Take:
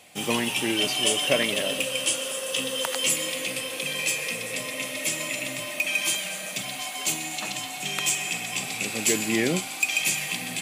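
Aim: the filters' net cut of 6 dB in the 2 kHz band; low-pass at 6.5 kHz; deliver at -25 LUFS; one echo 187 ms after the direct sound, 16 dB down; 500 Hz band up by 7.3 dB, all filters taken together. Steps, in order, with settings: low-pass 6.5 kHz; peaking EQ 500 Hz +9 dB; peaking EQ 2 kHz -8.5 dB; delay 187 ms -16 dB; trim +1.5 dB

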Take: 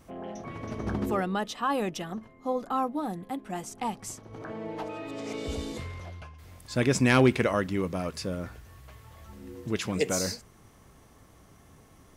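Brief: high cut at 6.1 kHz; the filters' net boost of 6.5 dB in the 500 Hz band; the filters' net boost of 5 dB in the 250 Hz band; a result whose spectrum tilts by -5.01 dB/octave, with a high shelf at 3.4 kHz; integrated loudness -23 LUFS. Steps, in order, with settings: low-pass 6.1 kHz; peaking EQ 250 Hz +4 dB; peaking EQ 500 Hz +7 dB; treble shelf 3.4 kHz -8.5 dB; trim +3 dB

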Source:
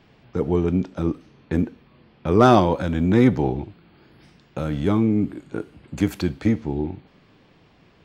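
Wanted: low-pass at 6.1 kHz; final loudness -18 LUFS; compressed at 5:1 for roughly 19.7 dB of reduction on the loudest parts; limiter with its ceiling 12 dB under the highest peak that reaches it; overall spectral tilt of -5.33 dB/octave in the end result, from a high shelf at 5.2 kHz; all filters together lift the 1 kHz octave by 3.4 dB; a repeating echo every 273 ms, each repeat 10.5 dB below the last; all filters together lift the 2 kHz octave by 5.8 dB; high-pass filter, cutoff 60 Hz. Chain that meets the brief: high-pass 60 Hz; low-pass 6.1 kHz; peaking EQ 1 kHz +3 dB; peaking EQ 2 kHz +7 dB; treble shelf 5.2 kHz -3.5 dB; compression 5:1, threshold -31 dBFS; peak limiter -29 dBFS; feedback delay 273 ms, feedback 30%, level -10.5 dB; trim +22.5 dB

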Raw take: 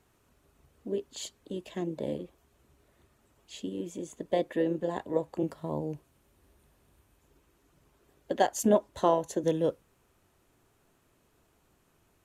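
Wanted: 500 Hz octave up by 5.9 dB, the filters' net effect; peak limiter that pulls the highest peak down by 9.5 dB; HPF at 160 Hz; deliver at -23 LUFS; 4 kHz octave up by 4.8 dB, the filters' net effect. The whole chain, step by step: high-pass 160 Hz; peaking EQ 500 Hz +7 dB; peaking EQ 4 kHz +6 dB; trim +7 dB; peak limiter -8.5 dBFS

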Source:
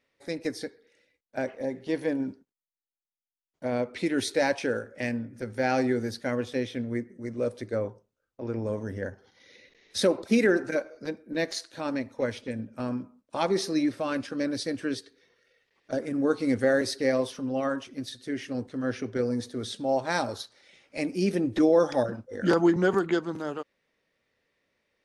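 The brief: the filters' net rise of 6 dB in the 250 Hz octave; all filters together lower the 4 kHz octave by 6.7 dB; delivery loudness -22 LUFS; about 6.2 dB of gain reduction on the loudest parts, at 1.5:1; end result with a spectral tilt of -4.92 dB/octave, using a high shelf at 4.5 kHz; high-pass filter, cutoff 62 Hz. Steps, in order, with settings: high-pass 62 Hz; peaking EQ 250 Hz +7.5 dB; peaking EQ 4 kHz -6.5 dB; treble shelf 4.5 kHz -3 dB; compression 1.5:1, threshold -30 dBFS; trim +7.5 dB

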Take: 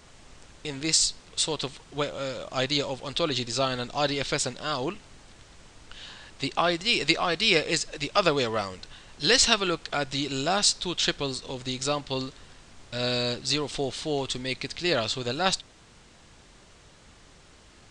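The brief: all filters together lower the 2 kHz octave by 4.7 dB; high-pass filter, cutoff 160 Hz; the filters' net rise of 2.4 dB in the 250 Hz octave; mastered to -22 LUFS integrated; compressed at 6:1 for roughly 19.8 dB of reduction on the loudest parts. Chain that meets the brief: high-pass 160 Hz; peaking EQ 250 Hz +4 dB; peaking EQ 2 kHz -6.5 dB; compression 6:1, threshold -40 dBFS; trim +21 dB

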